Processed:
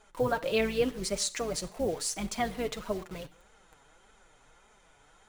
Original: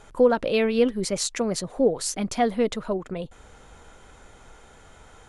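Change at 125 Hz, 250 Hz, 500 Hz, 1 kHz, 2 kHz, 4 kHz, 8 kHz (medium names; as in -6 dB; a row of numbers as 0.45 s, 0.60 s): -4.5 dB, -10.0 dB, -8.5 dB, -6.0 dB, -3.5 dB, -3.5 dB, -4.0 dB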